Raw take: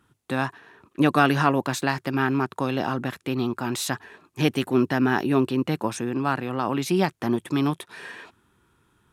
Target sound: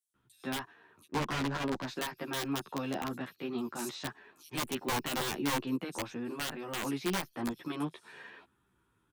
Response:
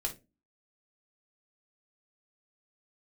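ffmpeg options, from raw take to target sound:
-filter_complex "[0:a]acrossover=split=140|1400|3300[a][b][c][d];[a]acompressor=threshold=-51dB:ratio=8[e];[e][b][c][d]amix=inputs=4:normalize=0,acrossover=split=5300[f][g];[f]adelay=140[h];[h][g]amix=inputs=2:normalize=0,aeval=exprs='(mod(5.62*val(0)+1,2)-1)/5.62':c=same,asplit=3[i][j][k];[i]afade=t=out:st=1.05:d=0.02[l];[j]adynamicsmooth=sensitivity=1.5:basefreq=520,afade=t=in:st=1.05:d=0.02,afade=t=out:st=1.85:d=0.02[m];[k]afade=t=in:st=1.85:d=0.02[n];[l][m][n]amix=inputs=3:normalize=0,asplit=2[o][p];[p]adelay=11.6,afreqshift=-0.72[q];[o][q]amix=inputs=2:normalize=1,volume=-7dB"

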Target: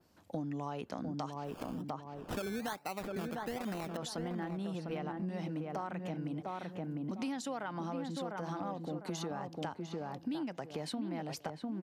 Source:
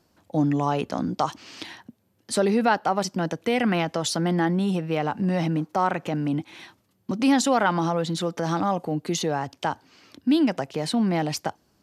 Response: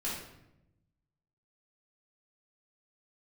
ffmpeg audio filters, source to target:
-filter_complex "[0:a]asettb=1/sr,asplit=3[a][b][c];[a]atrim=end=1.444[d];[b]atrim=start=1.44:end=3.97,asetpts=PTS-STARTPTS,afade=t=in:d=0.004:c=qsin,afade=t=out:st=2.526:d=0.004:c=qsin,acrusher=samples=18:mix=1:aa=0.000001:lfo=1:lforange=10.8:lforate=1.2[e];[c]atrim=start=3.966[f];[d][e]acrossfade=d=0.004:c1=hsin:c2=qsin[g];[g][f]acrossfade=d=0.004:c1=qsin:c2=hsin,asplit=2[h][i];[i]adelay=701,lowpass=f=1.3k:p=1,volume=-4.5dB,asplit=2[j][k];[k]adelay=701,lowpass=f=1.3k:p=1,volume=0.27,asplit=2[l][m];[m]adelay=701,lowpass=f=1.3k:p=1,volume=0.27,asplit=2[n][o];[o]adelay=701,lowpass=f=1.3k:p=1,volume=0.27[p];[h][j][l][n][p]amix=inputs=5:normalize=0,acompressor=threshold=-33dB:ratio=6,adynamicequalizer=threshold=0.00178:dfrequency=6600:dqfactor=0.72:tfrequency=6600:tqfactor=0.72:attack=5:release=100:ratio=0.375:range=2:mode=cutabove:tftype=bell,volume=-3.5dB"

